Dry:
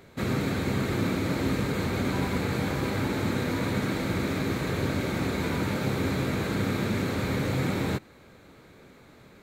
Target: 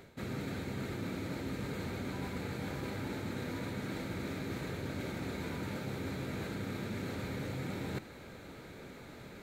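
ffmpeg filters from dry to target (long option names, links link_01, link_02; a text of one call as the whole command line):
ffmpeg -i in.wav -af "bandreject=frequency=1100:width=11,areverse,acompressor=threshold=-42dB:ratio=4,areverse,volume=3dB" out.wav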